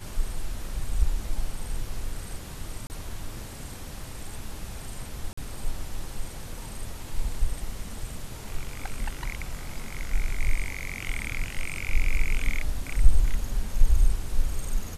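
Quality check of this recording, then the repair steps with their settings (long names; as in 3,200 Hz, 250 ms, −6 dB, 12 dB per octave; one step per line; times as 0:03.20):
0:02.87–0:02.90: drop-out 29 ms
0:05.33–0:05.37: drop-out 44 ms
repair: repair the gap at 0:02.87, 29 ms
repair the gap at 0:05.33, 44 ms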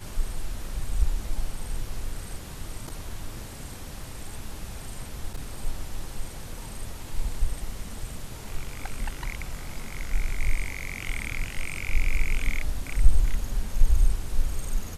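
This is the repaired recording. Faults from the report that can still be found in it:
none of them is left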